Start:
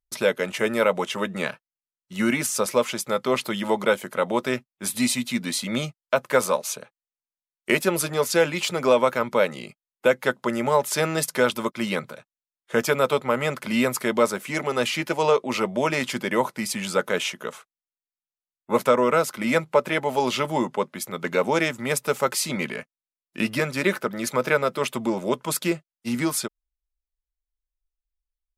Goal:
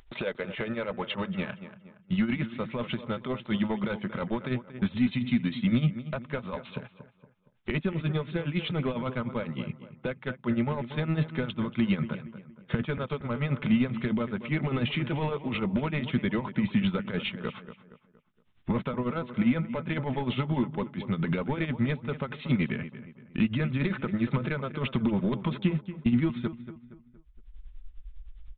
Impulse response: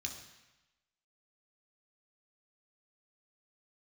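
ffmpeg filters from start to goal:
-filter_complex "[0:a]agate=range=-15dB:threshold=-40dB:ratio=16:detection=peak,tremolo=f=9.9:d=0.78,acompressor=mode=upward:threshold=-26dB:ratio=2.5,alimiter=limit=-13dB:level=0:latency=1:release=400,acompressor=threshold=-27dB:ratio=4,asplit=2[a][b];[b]adelay=233,lowpass=f=2.3k:p=1,volume=-14dB,asplit=2[c][d];[d]adelay=233,lowpass=f=2.3k:p=1,volume=0.42,asplit=2[e][f];[f]adelay=233,lowpass=f=2.3k:p=1,volume=0.42,asplit=2[g][h];[h]adelay=233,lowpass=f=2.3k:p=1,volume=0.42[i];[a][c][e][g][i]amix=inputs=5:normalize=0,aresample=8000,asoftclip=type=tanh:threshold=-23.5dB,aresample=44100,asubboost=boost=6.5:cutoff=200,volume=1.5dB"

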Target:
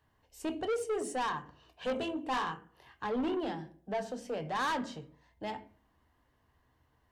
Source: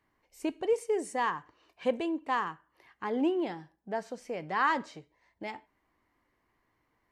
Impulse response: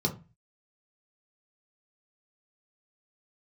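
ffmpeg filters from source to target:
-filter_complex "[0:a]asettb=1/sr,asplit=3[a][b][c];[a]atrim=end=1.874[d];[b]atrim=start=1.87:end=3.06,asetpts=PTS-STARTPTS,afade=t=in:d=0.004:c=qsin,afade=t=out:st=1.186:d=0.004:c=qsin,asplit=2[e][f];[f]adelay=23,volume=-5dB[g];[e][g]amix=inputs=2:normalize=0,atrim=end_sample=52479[h];[c]atrim=start=3.056[i];[d][h]acrossfade=d=0.004:c1=hsin:c2=qsin[j];[j][i]acrossfade=d=0.004:c1=qsin:c2=hsin,asplit=2[k][l];[l]equalizer=f=640:w=1.1:g=-4[m];[1:a]atrim=start_sample=2205,asetrate=23814,aresample=44100[n];[m][n]afir=irnorm=-1:irlink=0,volume=-16.5dB[o];[k][o]amix=inputs=2:normalize=0,asoftclip=type=tanh:threshold=-31dB,volume=2.5dB"

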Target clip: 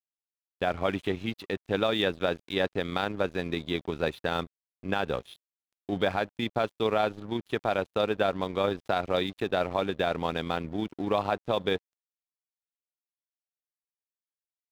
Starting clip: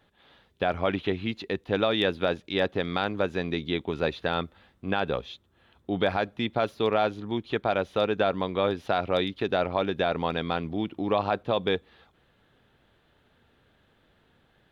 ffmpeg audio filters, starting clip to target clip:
-af "tremolo=f=28:d=0.261,aeval=exprs='sgn(val(0))*max(abs(val(0))-0.00501,0)':c=same"

